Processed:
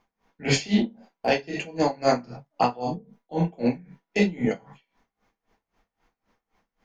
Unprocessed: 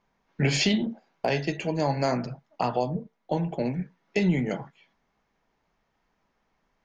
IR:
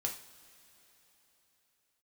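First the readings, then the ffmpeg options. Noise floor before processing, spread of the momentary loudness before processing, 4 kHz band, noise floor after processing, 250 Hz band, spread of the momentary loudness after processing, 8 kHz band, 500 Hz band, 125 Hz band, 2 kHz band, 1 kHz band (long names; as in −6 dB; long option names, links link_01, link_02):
−75 dBFS, 11 LU, −0.5 dB, below −85 dBFS, +2.0 dB, 11 LU, +1.0 dB, +2.5 dB, −2.5 dB, +1.5 dB, +3.5 dB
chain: -filter_complex "[1:a]atrim=start_sample=2205,afade=type=out:start_time=0.16:duration=0.01,atrim=end_sample=7497[link_01];[0:a][link_01]afir=irnorm=-1:irlink=0,aeval=exprs='val(0)*pow(10,-23*(0.5-0.5*cos(2*PI*3.8*n/s))/20)':channel_layout=same,volume=5.5dB"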